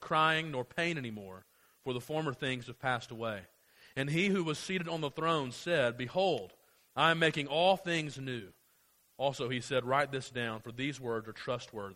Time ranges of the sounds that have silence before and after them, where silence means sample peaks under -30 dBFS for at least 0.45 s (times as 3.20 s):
1.87–3.38 s
3.97–6.38 s
6.97–8.38 s